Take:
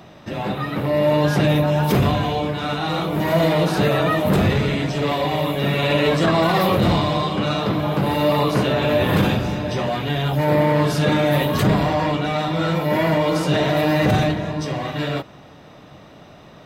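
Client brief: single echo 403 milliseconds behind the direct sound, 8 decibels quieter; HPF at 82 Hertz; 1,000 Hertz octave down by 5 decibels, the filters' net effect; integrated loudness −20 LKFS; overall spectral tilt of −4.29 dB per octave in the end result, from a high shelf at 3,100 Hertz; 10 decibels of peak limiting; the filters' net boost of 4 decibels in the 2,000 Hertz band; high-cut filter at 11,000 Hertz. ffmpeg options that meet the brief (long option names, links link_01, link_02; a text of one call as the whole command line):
ffmpeg -i in.wav -af "highpass=82,lowpass=11000,equalizer=frequency=1000:width_type=o:gain=-8.5,equalizer=frequency=2000:width_type=o:gain=6,highshelf=frequency=3100:gain=3.5,alimiter=limit=-15.5dB:level=0:latency=1,aecho=1:1:403:0.398,volume=3.5dB" out.wav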